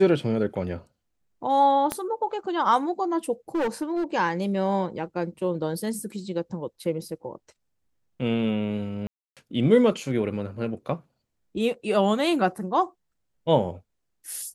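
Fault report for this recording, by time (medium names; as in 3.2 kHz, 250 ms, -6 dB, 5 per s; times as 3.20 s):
1.92 s: pop -12 dBFS
3.55–4.04 s: clipped -22 dBFS
9.07–9.37 s: dropout 297 ms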